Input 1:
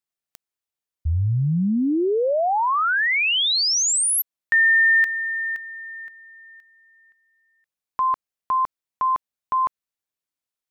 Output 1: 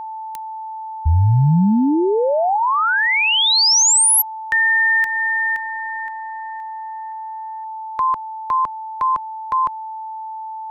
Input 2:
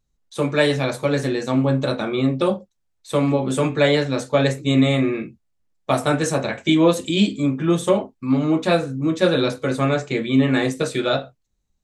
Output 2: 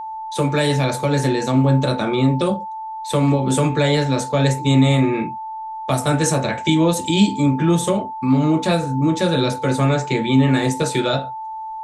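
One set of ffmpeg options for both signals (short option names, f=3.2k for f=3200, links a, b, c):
-filter_complex "[0:a]acrossover=split=180|5000[a][b][c];[b]acompressor=threshold=-23dB:ratio=3:attack=0.33:release=437:knee=2.83:detection=peak[d];[a][d][c]amix=inputs=3:normalize=0,aeval=exprs='val(0)+0.02*sin(2*PI*880*n/s)':c=same,volume=7dB"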